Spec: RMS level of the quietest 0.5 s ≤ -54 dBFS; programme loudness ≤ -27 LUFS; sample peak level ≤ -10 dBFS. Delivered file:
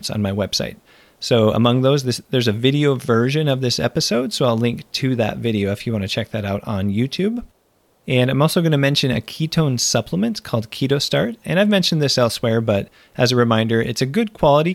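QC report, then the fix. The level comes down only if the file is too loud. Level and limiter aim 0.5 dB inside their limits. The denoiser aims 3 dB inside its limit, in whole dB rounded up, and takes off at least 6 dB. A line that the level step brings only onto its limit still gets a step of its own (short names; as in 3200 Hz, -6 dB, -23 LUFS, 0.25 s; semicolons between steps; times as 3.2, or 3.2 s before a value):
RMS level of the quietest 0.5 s -60 dBFS: OK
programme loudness -18.5 LUFS: fail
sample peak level -3.0 dBFS: fail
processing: gain -9 dB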